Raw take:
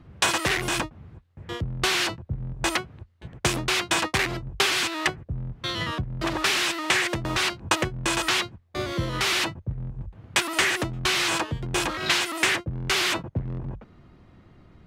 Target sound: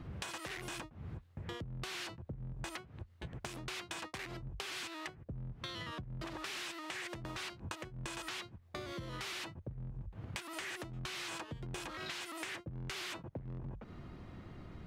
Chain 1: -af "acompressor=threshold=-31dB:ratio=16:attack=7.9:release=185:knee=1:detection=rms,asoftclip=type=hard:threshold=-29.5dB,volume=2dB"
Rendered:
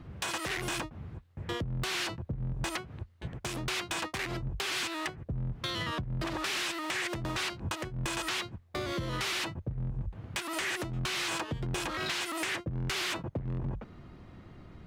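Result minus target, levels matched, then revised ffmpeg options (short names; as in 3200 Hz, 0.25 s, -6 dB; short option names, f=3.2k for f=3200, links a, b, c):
compressor: peak gain reduction -10 dB
-af "acompressor=threshold=-41.5dB:ratio=16:attack=7.9:release=185:knee=1:detection=rms,asoftclip=type=hard:threshold=-29.5dB,volume=2dB"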